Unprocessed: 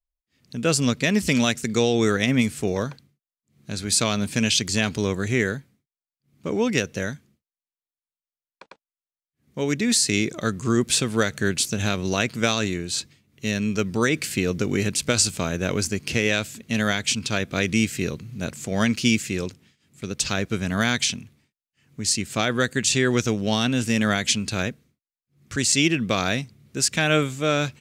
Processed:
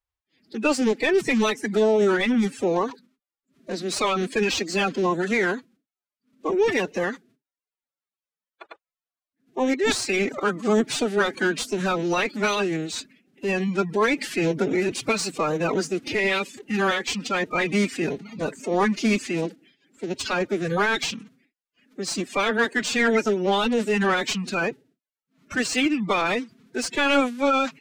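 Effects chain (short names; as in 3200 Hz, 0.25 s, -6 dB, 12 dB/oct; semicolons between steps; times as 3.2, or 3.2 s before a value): bin magnitudes rounded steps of 30 dB; overdrive pedal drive 16 dB, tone 1200 Hz, clips at -6 dBFS; formant-preserving pitch shift +10.5 st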